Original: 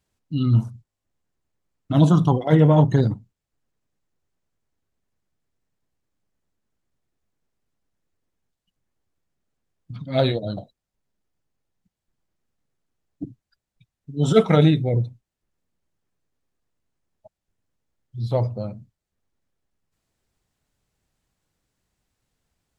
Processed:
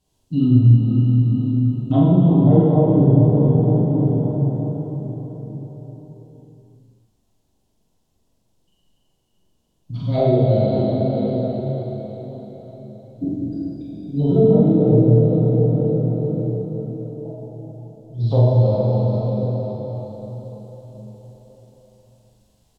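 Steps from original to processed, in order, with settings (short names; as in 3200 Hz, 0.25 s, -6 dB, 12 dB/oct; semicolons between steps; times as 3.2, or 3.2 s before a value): band shelf 1700 Hz -11 dB 1.2 oct; treble ducked by the level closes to 470 Hz, closed at -15.5 dBFS; plate-style reverb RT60 5 s, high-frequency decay 0.9×, DRR -9 dB; compressor 2:1, threshold -20 dBFS, peak gain reduction 9.5 dB; doubler 43 ms -2.5 dB; gain +2.5 dB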